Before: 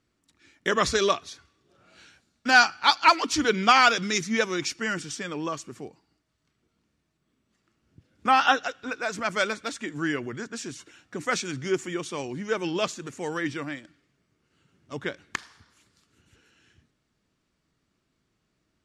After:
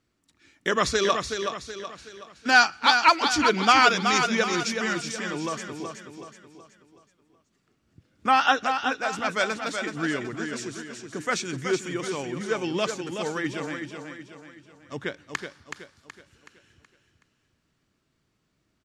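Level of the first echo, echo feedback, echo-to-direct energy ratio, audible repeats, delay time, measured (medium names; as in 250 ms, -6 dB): -6.5 dB, 43%, -5.5 dB, 4, 374 ms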